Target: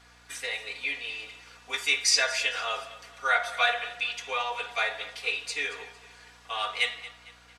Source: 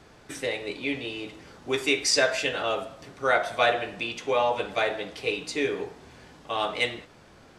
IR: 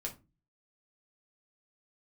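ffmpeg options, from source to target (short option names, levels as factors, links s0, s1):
-filter_complex "[0:a]highpass=1100,aecho=1:1:4.2:0.9,aeval=exprs='val(0)+0.00112*(sin(2*PI*60*n/s)+sin(2*PI*2*60*n/s)/2+sin(2*PI*3*60*n/s)/3+sin(2*PI*4*60*n/s)/4+sin(2*PI*5*60*n/s)/5)':c=same,asplit=2[s0][s1];[s1]aecho=0:1:227|454|681:0.141|0.0565|0.0226[s2];[s0][s2]amix=inputs=2:normalize=0,volume=0.891"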